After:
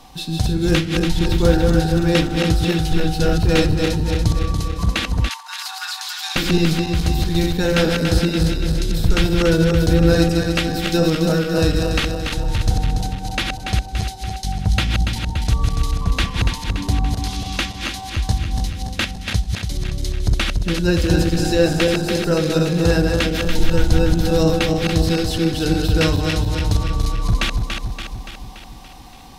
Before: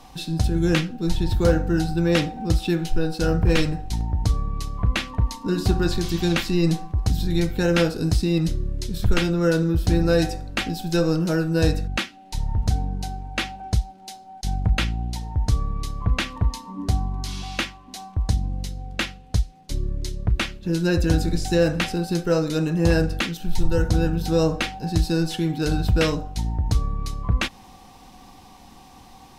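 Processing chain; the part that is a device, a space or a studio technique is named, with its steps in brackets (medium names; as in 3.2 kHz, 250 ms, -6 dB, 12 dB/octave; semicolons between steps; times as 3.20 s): backward echo that repeats 143 ms, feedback 76%, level -4 dB; presence and air boost (peaking EQ 3.7 kHz +3 dB 0.77 oct; treble shelf 10 kHz +4 dB); 5.29–6.36 s: steep high-pass 790 Hz 72 dB/octave; trim +1.5 dB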